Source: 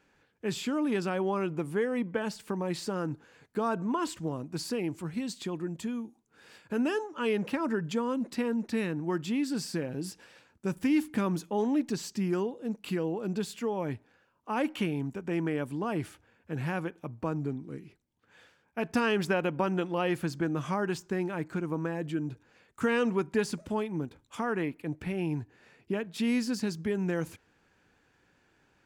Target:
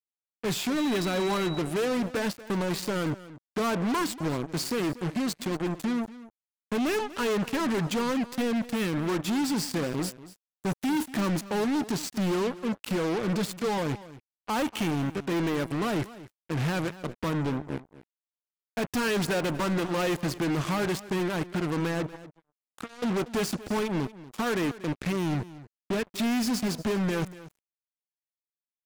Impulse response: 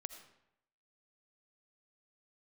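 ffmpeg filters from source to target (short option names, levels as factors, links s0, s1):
-filter_complex "[0:a]asettb=1/sr,asplit=3[s0][s1][s2];[s0]atrim=end=13.294[s3];[s1]atrim=start=13.29:end=13.78,asetpts=PTS-STARTPTS,afade=t=in:d=0.004:c=qsin,afade=t=out:st=0.486:d=0.004:c=qsin,aecho=1:1:6.1:0.42,atrim=end_sample=21609[s4];[s2]atrim=start=13.776[s5];[s3][s4]acrossfade=d=0.004:c1=hsin:c2=qsin[s6];[s6][s5]acrossfade=d=0.004:c1=qsin:c2=hsin,asplit=3[s7][s8][s9];[s7]afade=t=out:st=22.06:d=0.02[s10];[s8]acompressor=threshold=0.00631:ratio=5,afade=t=in:st=22.06:d=0.02,afade=t=out:st=23.02:d=0.02[s11];[s9]afade=t=in:st=23.02:d=0.02[s12];[s10][s11][s12]amix=inputs=3:normalize=0,acrusher=bits=5:mix=0:aa=0.5,asoftclip=type=hard:threshold=0.0282,asettb=1/sr,asplit=3[s13][s14][s15];[s13]atrim=end=0.774[s16];[s14]atrim=start=0.77:end=1.59,asetpts=PTS-STARTPTS,afade=t=in:d=0.004:c=qsin,afade=t=out:st=0.816:d=0.004:c=qsin,aeval=exprs='val(0)+0.00447*sin(2*PI*3900*n/s)':c=same[s17];[s15]atrim=start=1.586[s18];[s16][s17]acrossfade=d=0.004:c1=hsin:c2=qsin[s19];[s19][s18]acrossfade=d=0.004:c1=qsin:c2=hsin,asplit=2[s20][s21];[s21]aecho=0:1:238:0.141[s22];[s20][s22]amix=inputs=2:normalize=0,volume=2.11"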